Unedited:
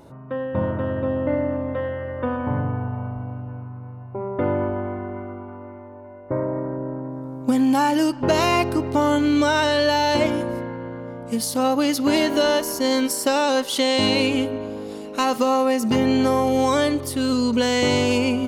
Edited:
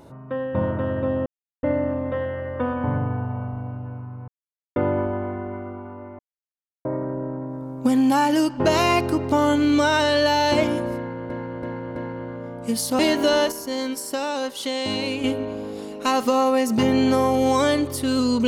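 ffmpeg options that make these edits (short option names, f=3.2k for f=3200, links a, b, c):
-filter_complex "[0:a]asplit=12[a][b][c][d][e][f][g][h][i][j][k][l];[a]atrim=end=1.26,asetpts=PTS-STARTPTS,afade=t=out:st=1.256:d=0.004:c=hsin,apad=pad_dur=0.37[m];[b]atrim=start=1.26:end=3.91,asetpts=PTS-STARTPTS,afade=t=in:d=0.004:c=hsin,afade=t=out:st=2.646:d=0.004:c=hsin[n];[c]atrim=start=3.91:end=4.39,asetpts=PTS-STARTPTS,volume=0[o];[d]atrim=start=4.39:end=5.82,asetpts=PTS-STARTPTS,afade=t=in:d=0.004:c=hsin,afade=t=out:st=1.426:d=0.004:c=hsin[p];[e]atrim=start=5.82:end=6.48,asetpts=PTS-STARTPTS,volume=0[q];[f]atrim=start=6.48:end=10.932,asetpts=PTS-STARTPTS,afade=t=in:d=0.004:c=hsin[r];[g]atrim=start=10.598:end=10.932[s];[h]atrim=start=10.598:end=10.932[t];[i]atrim=start=10.598:end=11.632[u];[j]atrim=start=12.118:end=12.652[v];[k]atrim=start=12.648:end=14.372,asetpts=PTS-STARTPTS,volume=-6.5dB[w];[l]atrim=start=14.368[x];[m][n][o][p][q][r]concat=n=6:v=0:a=1[y];[y][s]acrossfade=d=0.004:c1=hsin:c2=hsin[z];[z][t]acrossfade=d=0.004:c1=hsin:c2=hsin[aa];[aa][u]acrossfade=d=0.004:c1=hsin:c2=hsin[ab];[ab][v]acrossfade=d=0.004:c1=hsin:c2=hsin[ac];[ac][w]acrossfade=d=0.004:c1=hsin:c2=hsin[ad];[ad][x]acrossfade=d=0.004:c1=hsin:c2=hsin"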